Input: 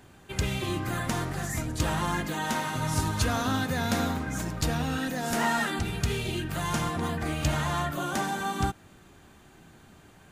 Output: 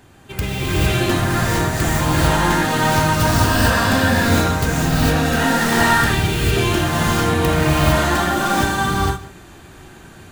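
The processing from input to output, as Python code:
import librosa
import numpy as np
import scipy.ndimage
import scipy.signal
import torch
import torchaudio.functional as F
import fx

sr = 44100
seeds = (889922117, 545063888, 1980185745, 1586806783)

y = fx.tracing_dist(x, sr, depth_ms=0.19)
y = fx.ripple_eq(y, sr, per_octave=1.3, db=7, at=(3.12, 3.89))
y = y + 10.0 ** (-19.0 / 20.0) * np.pad(y, (int(154 * sr / 1000.0), 0))[:len(y)]
y = fx.rev_gated(y, sr, seeds[0], gate_ms=480, shape='rising', drr_db=-7.5)
y = y * librosa.db_to_amplitude(4.5)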